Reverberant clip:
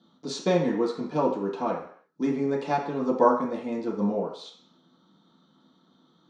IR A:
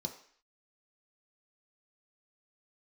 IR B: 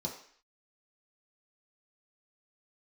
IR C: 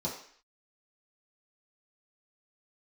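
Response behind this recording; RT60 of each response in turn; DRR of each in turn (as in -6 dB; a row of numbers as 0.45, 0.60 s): C; 0.55, 0.55, 0.55 s; 3.0, -2.0, -6.5 dB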